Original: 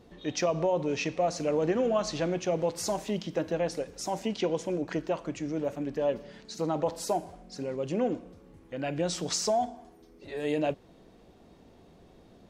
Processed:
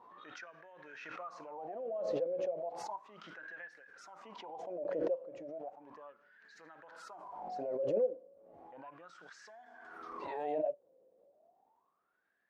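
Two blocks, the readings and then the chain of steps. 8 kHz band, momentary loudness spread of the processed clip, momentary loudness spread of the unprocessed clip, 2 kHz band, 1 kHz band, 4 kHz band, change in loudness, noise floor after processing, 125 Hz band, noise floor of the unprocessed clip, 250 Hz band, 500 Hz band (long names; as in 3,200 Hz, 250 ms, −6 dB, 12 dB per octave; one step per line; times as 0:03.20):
below −25 dB, 20 LU, 9 LU, −9.0 dB, −10.0 dB, −20.5 dB, −9.0 dB, −78 dBFS, −22.5 dB, −57 dBFS, −17.0 dB, −8.5 dB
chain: LFO wah 0.34 Hz 520–1,700 Hz, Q 18
background raised ahead of every attack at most 28 dB per second
level +1.5 dB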